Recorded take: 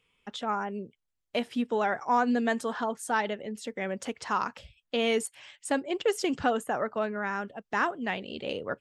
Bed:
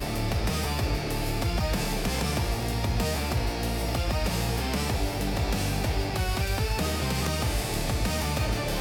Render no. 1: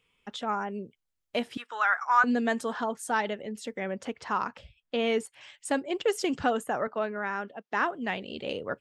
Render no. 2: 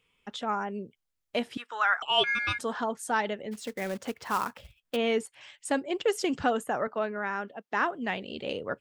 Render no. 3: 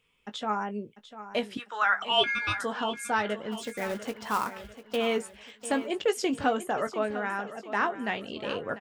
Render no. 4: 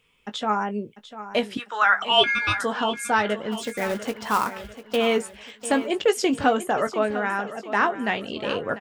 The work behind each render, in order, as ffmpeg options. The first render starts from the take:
ffmpeg -i in.wav -filter_complex "[0:a]asettb=1/sr,asplit=3[link_01][link_02][link_03];[link_01]atrim=end=1.574[link_04];[link_02]atrim=start=1.57:end=2.24,asetpts=PTS-STARTPTS,afade=type=in:duration=0.004:curve=qsin,afade=type=out:start_time=0.666:duration=0.004:curve=qsin,highpass=frequency=1300:width_type=q:width=3.5[link_05];[link_03]atrim=start=2.236[link_06];[link_04][link_05]acrossfade=duration=0.004:curve1=hsin:curve2=qsin[link_07];[link_07][link_06]acrossfade=duration=0.004:curve1=qsin:curve2=hsin,asettb=1/sr,asplit=3[link_08][link_09][link_10];[link_08]atrim=end=3.804[link_11];[link_09]atrim=start=3.8:end=5.41,asetpts=PTS-STARTPTS,afade=type=in:duration=0.004:curve=qsin,afade=type=out:start_time=1.606:duration=0.004:curve=qsin,lowpass=frequency=3100:poles=1[link_12];[link_10]atrim=start=5.406[link_13];[link_11][link_12]acrossfade=duration=0.004:curve1=hsin:curve2=qsin[link_14];[link_14][link_13]acrossfade=duration=0.004:curve1=qsin:curve2=hsin,asettb=1/sr,asplit=3[link_15][link_16][link_17];[link_15]atrim=end=6.874[link_18];[link_16]atrim=start=6.87:end=7.93,asetpts=PTS-STARTPTS,afade=type=in:duration=0.004:curve=qsin,afade=type=out:start_time=1.056:duration=0.004:curve=qsin,highpass=210,lowpass=5100[link_19];[link_17]atrim=start=7.926[link_20];[link_18][link_19]acrossfade=duration=0.004:curve1=hsin:curve2=qsin[link_21];[link_21][link_20]acrossfade=duration=0.004:curve1=qsin:curve2=hsin" out.wav
ffmpeg -i in.wav -filter_complex "[0:a]asettb=1/sr,asplit=3[link_01][link_02][link_03];[link_01]atrim=end=2.024[link_04];[link_02]atrim=start=2.02:end=2.59,asetpts=PTS-STARTPTS,afade=type=in:duration=0.004:curve=qsin,afade=type=out:start_time=0.566:duration=0.004:curve=qsin,aeval=exprs='val(0)*sin(2*PI*1900*n/s)':channel_layout=same[link_05];[link_03]atrim=start=2.586[link_06];[link_04][link_05]acrossfade=duration=0.004:curve1=hsin:curve2=qsin[link_07];[link_07][link_06]acrossfade=duration=0.004:curve1=qsin:curve2=hsin,asplit=3[link_08][link_09][link_10];[link_08]afade=type=out:start_time=3.51:duration=0.02[link_11];[link_09]acrusher=bits=3:mode=log:mix=0:aa=0.000001,afade=type=in:start_time=3.51:duration=0.02,afade=type=out:start_time=4.95:duration=0.02[link_12];[link_10]afade=type=in:start_time=4.95:duration=0.02[link_13];[link_11][link_12][link_13]amix=inputs=3:normalize=0" out.wav
ffmpeg -i in.wav -filter_complex "[0:a]asplit=2[link_01][link_02];[link_02]adelay=19,volume=-10dB[link_03];[link_01][link_03]amix=inputs=2:normalize=0,aecho=1:1:696|1392|2088|2784:0.211|0.0888|0.0373|0.0157" out.wav
ffmpeg -i in.wav -af "volume=6dB" out.wav

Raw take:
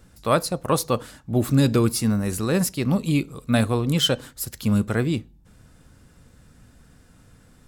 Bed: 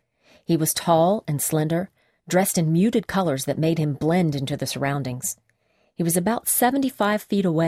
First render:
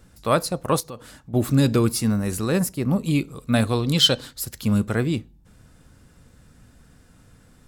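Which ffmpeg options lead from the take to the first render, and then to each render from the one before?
ffmpeg -i in.wav -filter_complex "[0:a]asettb=1/sr,asplit=3[link_01][link_02][link_03];[link_01]atrim=end=0.804[link_04];[link_02]atrim=start=0.8:end=1.34,asetpts=PTS-STARTPTS,afade=type=in:duration=0.004:curve=qsin,afade=type=out:start_time=0.536:duration=0.004:curve=qsin,acompressor=threshold=-39dB:ratio=2.5:attack=3.2:release=140:knee=1:detection=peak[link_05];[link_03]atrim=start=1.336[link_06];[link_04][link_05]acrossfade=duration=0.004:curve1=hsin:curve2=qsin[link_07];[link_07][link_06]acrossfade=duration=0.004:curve1=qsin:curve2=hsin,asettb=1/sr,asplit=3[link_08][link_09][link_10];[link_08]atrim=end=2.594[link_11];[link_09]atrim=start=2.59:end=3.05,asetpts=PTS-STARTPTS,afade=type=in:duration=0.004:curve=qsin,afade=type=out:start_time=0.456:duration=0.004:curve=qsin,equalizer=frequency=3700:width_type=o:width=1.8:gain=-8.5[link_12];[link_10]atrim=start=3.046[link_13];[link_11][link_12]acrossfade=duration=0.004:curve1=hsin:curve2=qsin[link_14];[link_14][link_13]acrossfade=duration=0.004:curve1=qsin:curve2=hsin,asettb=1/sr,asplit=3[link_15][link_16][link_17];[link_15]atrim=end=3.674[link_18];[link_16]atrim=start=3.67:end=4.41,asetpts=PTS-STARTPTS,afade=type=in:duration=0.004:curve=qsin,afade=type=out:start_time=0.736:duration=0.004:curve=qsin,equalizer=frequency=4200:width=1.7:gain=10[link_19];[link_17]atrim=start=4.406[link_20];[link_18][link_19]acrossfade=duration=0.004:curve1=hsin:curve2=qsin[link_21];[link_21][link_20]acrossfade=duration=0.004:curve1=qsin:curve2=hsin" out.wav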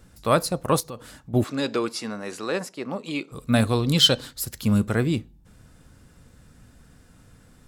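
ffmpeg -i in.wav -filter_complex "[0:a]asplit=3[link_01][link_02][link_03];[link_01]afade=type=out:start_time=1.43:duration=0.02[link_04];[link_02]highpass=420,lowpass=5300,afade=type=in:start_time=1.43:duration=0.02,afade=type=out:start_time=3.31:duration=0.02[link_05];[link_03]afade=type=in:start_time=3.31:duration=0.02[link_06];[link_04][link_05][link_06]amix=inputs=3:normalize=0" out.wav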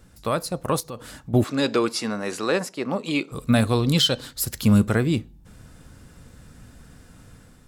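ffmpeg -i in.wav -af "alimiter=limit=-14dB:level=0:latency=1:release=456,dynaudnorm=framelen=490:gausssize=3:maxgain=5dB" out.wav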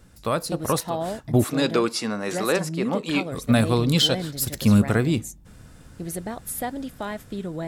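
ffmpeg -i in.wav -i bed.wav -filter_complex "[1:a]volume=-10.5dB[link_01];[0:a][link_01]amix=inputs=2:normalize=0" out.wav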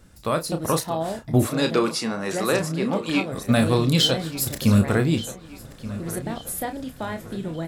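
ffmpeg -i in.wav -filter_complex "[0:a]asplit=2[link_01][link_02];[link_02]adelay=31,volume=-8dB[link_03];[link_01][link_03]amix=inputs=2:normalize=0,asplit=2[link_04][link_05];[link_05]adelay=1179,lowpass=frequency=4300:poles=1,volume=-15.5dB,asplit=2[link_06][link_07];[link_07]adelay=1179,lowpass=frequency=4300:poles=1,volume=0.5,asplit=2[link_08][link_09];[link_09]adelay=1179,lowpass=frequency=4300:poles=1,volume=0.5,asplit=2[link_10][link_11];[link_11]adelay=1179,lowpass=frequency=4300:poles=1,volume=0.5,asplit=2[link_12][link_13];[link_13]adelay=1179,lowpass=frequency=4300:poles=1,volume=0.5[link_14];[link_04][link_06][link_08][link_10][link_12][link_14]amix=inputs=6:normalize=0" out.wav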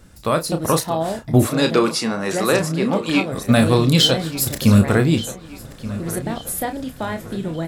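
ffmpeg -i in.wav -af "volume=4.5dB" out.wav

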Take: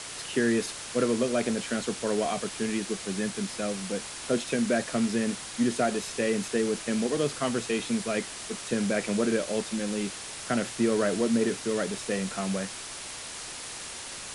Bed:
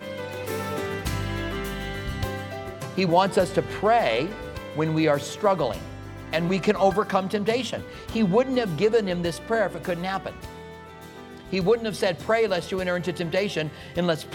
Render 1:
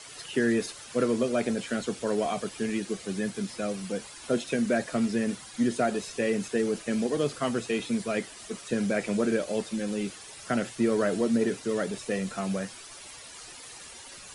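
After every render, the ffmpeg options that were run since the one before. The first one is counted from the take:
ffmpeg -i in.wav -af "afftdn=noise_reduction=11:noise_floor=-40" out.wav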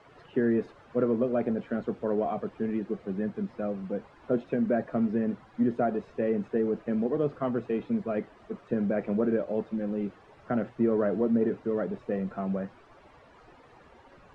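ffmpeg -i in.wav -af "lowpass=1100" out.wav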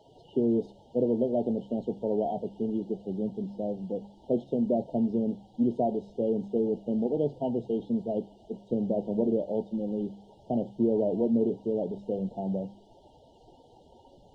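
ffmpeg -i in.wav -af "afftfilt=real='re*(1-between(b*sr/4096,950,2800))':imag='im*(1-between(b*sr/4096,950,2800))':win_size=4096:overlap=0.75,bandreject=frequency=67.01:width_type=h:width=4,bandreject=frequency=134.02:width_type=h:width=4,bandreject=frequency=201.03:width_type=h:width=4" out.wav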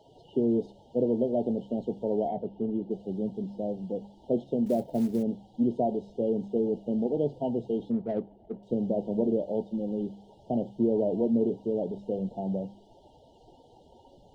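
ffmpeg -i in.wav -filter_complex "[0:a]asettb=1/sr,asplit=3[link_01][link_02][link_03];[link_01]atrim=end=2.284[link_04];[link_02]atrim=start=2.28:end=2.91,asetpts=PTS-STARTPTS,afade=type=in:duration=0.004:curve=qsin,afade=type=out:start_time=0.626:duration=0.004:curve=qsin,adynamicsmooth=sensitivity=1.5:basefreq=2800[link_05];[link_03]atrim=start=2.906[link_06];[link_04][link_05]acrossfade=duration=0.004:curve1=hsin:curve2=qsin[link_07];[link_07][link_06]acrossfade=duration=0.004:curve1=qsin:curve2=hsin,asettb=1/sr,asplit=3[link_08][link_09][link_10];[link_08]atrim=end=4.664[link_11];[link_09]atrim=start=4.66:end=5.23,asetpts=PTS-STARTPTS,afade=type=in:duration=0.004:curve=qsin,afade=type=out:start_time=0.566:duration=0.004:curve=qsin,acrusher=bits=7:mode=log:mix=0:aa=0.000001[link_12];[link_10]atrim=start=5.226[link_13];[link_11][link_12]acrossfade=duration=0.004:curve1=hsin:curve2=qsin[link_14];[link_14][link_13]acrossfade=duration=0.004:curve1=qsin:curve2=hsin,asettb=1/sr,asplit=3[link_15][link_16][link_17];[link_15]atrim=end=7.914[link_18];[link_16]atrim=start=7.91:end=8.63,asetpts=PTS-STARTPTS,afade=type=in:duration=0.004:curve=qsin,afade=type=out:start_time=0.716:duration=0.004:curve=qsin,adynamicsmooth=sensitivity=5.5:basefreq=1300[link_19];[link_17]atrim=start=8.626[link_20];[link_18][link_19]acrossfade=duration=0.004:curve1=hsin:curve2=qsin[link_21];[link_21][link_20]acrossfade=duration=0.004:curve1=qsin:curve2=hsin" out.wav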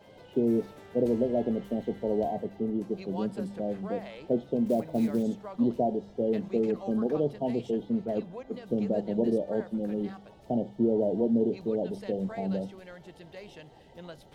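ffmpeg -i in.wav -i bed.wav -filter_complex "[1:a]volume=-21.5dB[link_01];[0:a][link_01]amix=inputs=2:normalize=0" out.wav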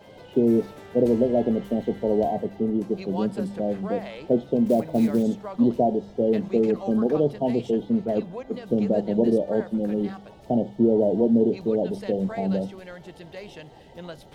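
ffmpeg -i in.wav -af "volume=6dB" out.wav

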